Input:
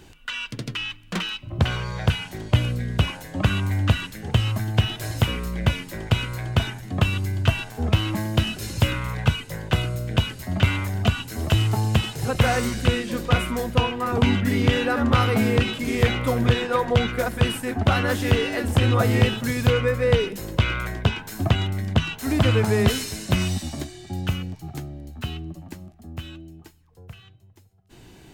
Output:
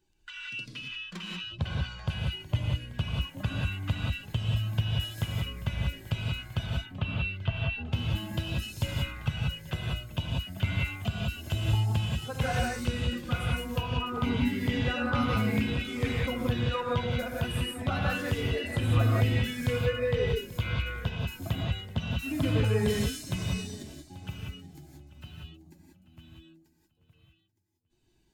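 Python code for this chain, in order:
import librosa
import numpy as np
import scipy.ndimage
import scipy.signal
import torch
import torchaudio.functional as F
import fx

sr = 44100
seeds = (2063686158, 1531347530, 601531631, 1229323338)

y = fx.bin_expand(x, sr, power=1.5)
y = fx.lowpass(y, sr, hz=3900.0, slope=24, at=(6.66, 7.86))
y = fx.echo_feedback(y, sr, ms=836, feedback_pct=25, wet_db=-19)
y = fx.rev_gated(y, sr, seeds[0], gate_ms=210, shape='rising', drr_db=-2.0)
y = F.gain(torch.from_numpy(y), -9.0).numpy()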